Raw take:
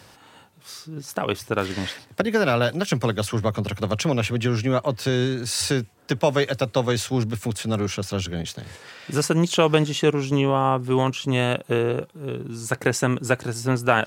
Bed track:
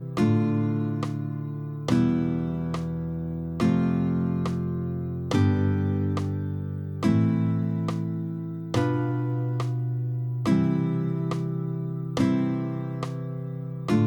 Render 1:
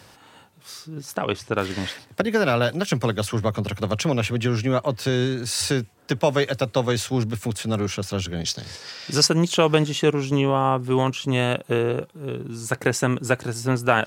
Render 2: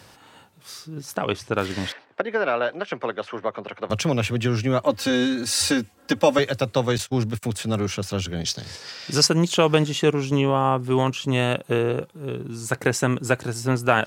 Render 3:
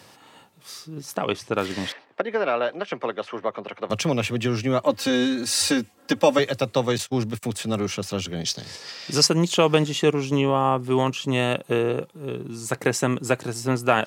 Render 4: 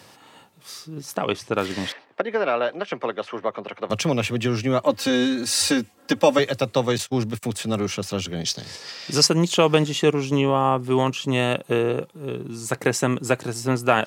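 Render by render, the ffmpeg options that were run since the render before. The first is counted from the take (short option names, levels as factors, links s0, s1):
-filter_complex "[0:a]asettb=1/sr,asplit=3[s0][s1][s2];[s0]atrim=end=1.164[s3];[s1]atrim=start=1.16:end=1.56,asetpts=PTS-STARTPTS,afade=t=in:d=0.004:c=qsin,afade=t=out:st=0.396:d=0.004:c=qsin,lowpass=7600[s4];[s2]atrim=start=1.556[s5];[s3][s4]acrossfade=d=0.004:c1=hsin:c2=qsin[s6];[s6][s5]acrossfade=d=0.004:c1=qsin:c2=hsin,asettb=1/sr,asplit=3[s7][s8][s9];[s7]atrim=end=8.414[s10];[s8]atrim=start=8.41:end=9.27,asetpts=PTS-STARTPTS,afade=t=in:d=0.004:c=qsin,afade=t=out:st=0.856:d=0.004:c=qsin,equalizer=f=5100:w=1.8:g=14.5[s11];[s9]atrim=start=9.266[s12];[s10][s11]acrossfade=d=0.004:c1=hsin:c2=qsin[s13];[s13][s12]acrossfade=d=0.004:c1=qsin:c2=hsin"
-filter_complex "[0:a]asettb=1/sr,asplit=3[s0][s1][s2];[s0]atrim=end=1.924[s3];[s1]atrim=start=1.92:end=3.9,asetpts=PTS-STARTPTS,afade=t=in:d=0.004:c=qsin,afade=t=out:st=1.976:d=0.004:c=qsin,highpass=420,lowpass=2200[s4];[s2]atrim=start=3.896[s5];[s3][s4]acrossfade=d=0.004:c1=hsin:c2=qsin[s6];[s6][s5]acrossfade=d=0.004:c1=qsin:c2=hsin,asettb=1/sr,asplit=3[s7][s8][s9];[s7]atrim=end=4.854[s10];[s8]atrim=start=4.85:end=6.39,asetpts=PTS-STARTPTS,afade=t=in:d=0.004:c=qsin,afade=t=out:st=1.536:d=0.004:c=qsin,aecho=1:1:3.7:0.93,atrim=end_sample=67914[s11];[s9]atrim=start=6.386[s12];[s10][s11]acrossfade=d=0.004:c1=hsin:c2=qsin[s13];[s13][s12]acrossfade=d=0.004:c1=qsin:c2=hsin,asettb=1/sr,asplit=3[s14][s15][s16];[s14]atrim=end=6.984[s17];[s15]atrim=start=6.98:end=7.43,asetpts=PTS-STARTPTS,afade=t=in:d=0.004:c=qsin,afade=t=out:st=0.446:d=0.004:c=qsin,agate=range=0.0891:threshold=0.0316:ratio=16:release=100:detection=peak[s18];[s16]atrim=start=7.426[s19];[s17][s18]acrossfade=d=0.004:c1=hsin:c2=qsin[s20];[s20][s19]acrossfade=d=0.004:c1=qsin:c2=hsin"
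-af "highpass=130,bandreject=f=1500:w=11"
-af "volume=1.12"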